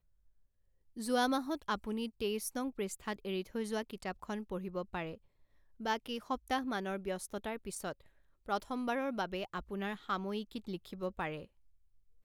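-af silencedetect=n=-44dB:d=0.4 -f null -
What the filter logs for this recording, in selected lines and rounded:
silence_start: 0.00
silence_end: 0.97 | silence_duration: 0.97
silence_start: 5.15
silence_end: 5.80 | silence_duration: 0.65
silence_start: 7.92
silence_end: 8.48 | silence_duration: 0.56
silence_start: 11.44
silence_end: 12.24 | silence_duration: 0.80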